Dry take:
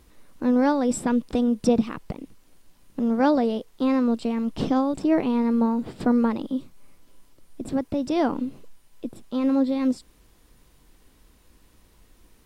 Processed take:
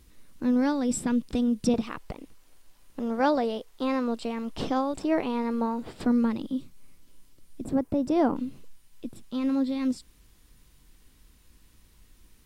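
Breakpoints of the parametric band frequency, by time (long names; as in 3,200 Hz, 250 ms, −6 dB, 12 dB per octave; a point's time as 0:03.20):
parametric band −8.5 dB 2.3 octaves
730 Hz
from 0:01.74 180 Hz
from 0:06.06 740 Hz
from 0:07.65 3,700 Hz
from 0:08.36 590 Hz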